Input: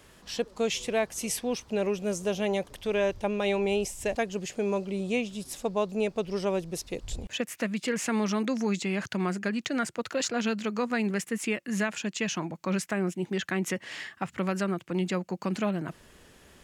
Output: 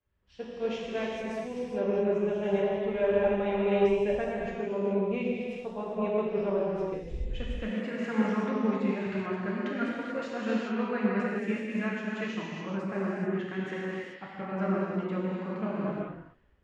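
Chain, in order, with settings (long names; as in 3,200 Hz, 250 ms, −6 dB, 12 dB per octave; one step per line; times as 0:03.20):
low-pass filter 2,000 Hz 12 dB per octave
reverb whose tail is shaped and stops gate 460 ms flat, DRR −6.5 dB
multiband upward and downward expander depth 70%
level −7 dB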